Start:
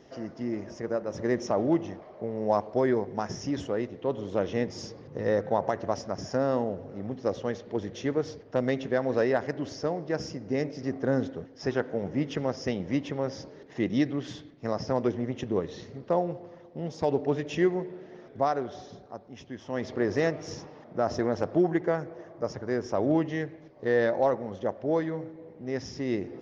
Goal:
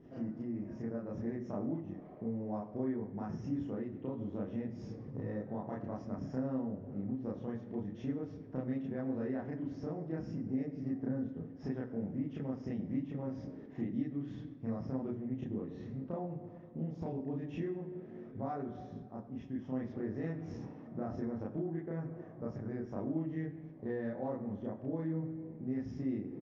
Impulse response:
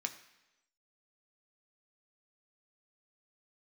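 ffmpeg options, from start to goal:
-filter_complex "[0:a]firequalizer=gain_entry='entry(220,0);entry(490,-11);entry(5200,-28)':delay=0.05:min_phase=1,acompressor=threshold=-40dB:ratio=4,asplit=2[link_01][link_02];[1:a]atrim=start_sample=2205,adelay=31[link_03];[link_02][link_03]afir=irnorm=-1:irlink=0,volume=4.5dB[link_04];[link_01][link_04]amix=inputs=2:normalize=0"

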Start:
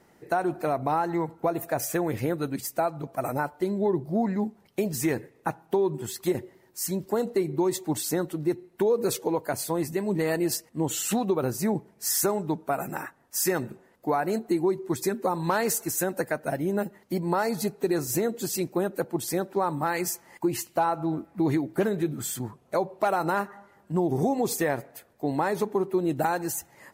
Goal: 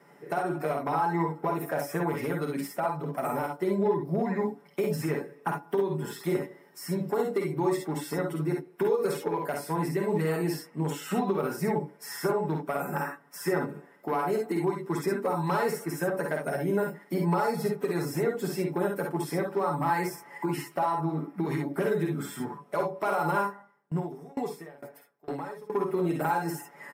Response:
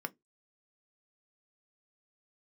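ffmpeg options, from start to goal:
-filter_complex "[0:a]lowshelf=frequency=110:gain=-11.5,aecho=1:1:7:0.64,acrossover=split=1300|3000[link_01][link_02][link_03];[link_01]acompressor=threshold=-28dB:ratio=4[link_04];[link_02]acompressor=threshold=-45dB:ratio=4[link_05];[link_03]acompressor=threshold=-41dB:ratio=4[link_06];[link_04][link_05][link_06]amix=inputs=3:normalize=0,asoftclip=type=hard:threshold=-23dB,aecho=1:1:51|65:0.562|0.531[link_07];[1:a]atrim=start_sample=2205[link_08];[link_07][link_08]afir=irnorm=-1:irlink=0,asettb=1/sr,asplit=3[link_09][link_10][link_11];[link_09]atrim=end=23.464[link_12];[link_10]atrim=start=23.46:end=25.7,asetpts=PTS-STARTPTS,afade=type=in:duration=0.004:curve=qsin,afade=type=out:start_time=2.236:duration=0.004:curve=qsin,aeval=exprs='val(0)*pow(10,-25*if(lt(mod(2.2*n/s,1),2*abs(2.2)/1000),1-mod(2.2*n/s,1)/(2*abs(2.2)/1000),(mod(2.2*n/s,1)-2*abs(2.2)/1000)/(1-2*abs(2.2)/1000))/20)':channel_layout=same[link_13];[link_11]atrim=start=25.696[link_14];[link_12][link_13]acrossfade=duration=0.004:curve1=hsin:curve2=qsin[link_15];[link_15][link_14]acrossfade=duration=0.004:curve1=qsin:curve2=hsin"

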